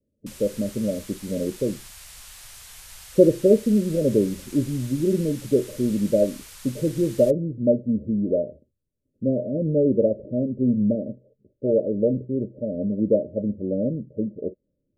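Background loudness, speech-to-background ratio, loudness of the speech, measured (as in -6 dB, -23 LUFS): -42.0 LUFS, 18.5 dB, -23.5 LUFS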